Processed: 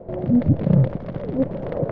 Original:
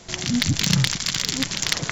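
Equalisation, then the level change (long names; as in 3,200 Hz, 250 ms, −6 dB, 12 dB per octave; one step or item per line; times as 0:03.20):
low-pass with resonance 550 Hz, resonance Q 4.9
high-frequency loss of the air 210 metres
+4.5 dB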